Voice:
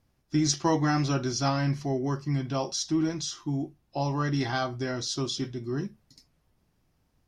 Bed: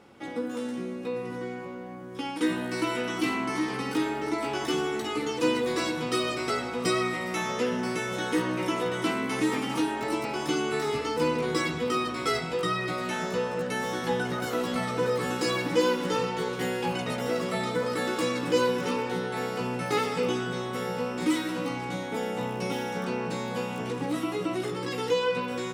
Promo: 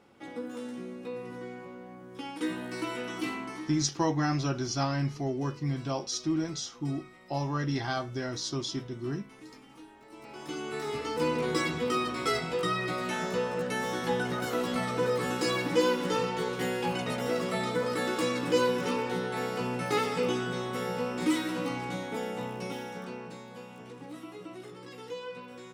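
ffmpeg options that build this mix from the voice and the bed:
-filter_complex "[0:a]adelay=3350,volume=0.708[s0];[1:a]volume=6.31,afade=t=out:st=3.27:d=0.6:silence=0.133352,afade=t=in:st=10.1:d=1.34:silence=0.0794328,afade=t=out:st=21.75:d=1.71:silence=0.237137[s1];[s0][s1]amix=inputs=2:normalize=0"

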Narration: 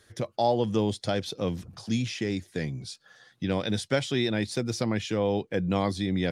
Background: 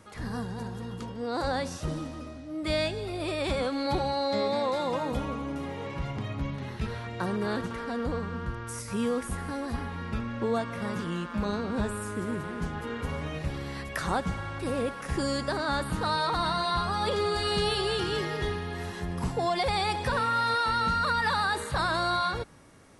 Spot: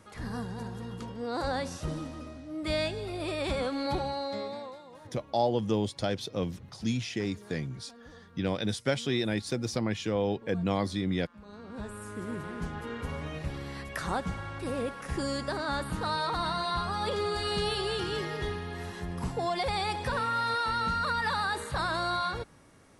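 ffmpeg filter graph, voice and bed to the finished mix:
-filter_complex "[0:a]adelay=4950,volume=0.75[s0];[1:a]volume=6.31,afade=t=out:st=3.85:d=0.97:silence=0.112202,afade=t=in:st=11.45:d=1.03:silence=0.125893[s1];[s0][s1]amix=inputs=2:normalize=0"

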